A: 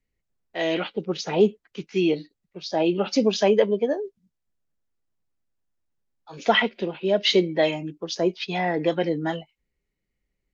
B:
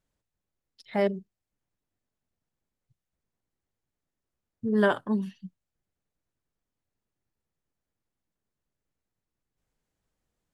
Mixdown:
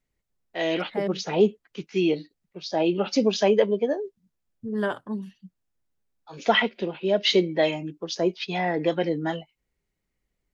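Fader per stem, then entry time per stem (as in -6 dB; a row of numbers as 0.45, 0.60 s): -1.0, -4.0 dB; 0.00, 0.00 s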